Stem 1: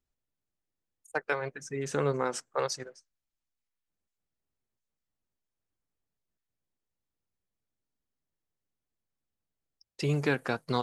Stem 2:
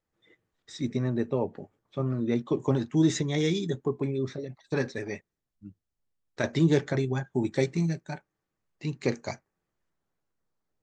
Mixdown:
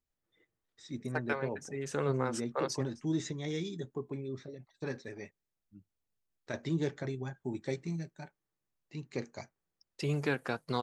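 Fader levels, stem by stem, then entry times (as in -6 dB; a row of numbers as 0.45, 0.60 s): -4.0, -10.0 dB; 0.00, 0.10 s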